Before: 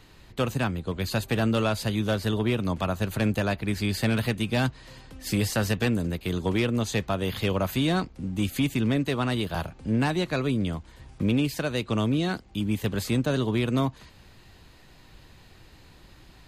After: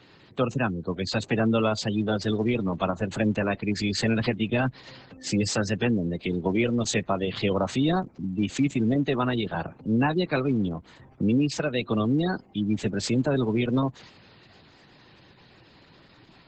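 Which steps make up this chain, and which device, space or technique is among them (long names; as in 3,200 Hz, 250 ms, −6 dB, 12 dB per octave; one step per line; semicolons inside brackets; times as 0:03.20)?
high-pass filter 78 Hz 12 dB per octave
noise-suppressed video call (high-pass filter 120 Hz 12 dB per octave; gate on every frequency bin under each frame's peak −20 dB strong; level +2.5 dB; Opus 12 kbit/s 48,000 Hz)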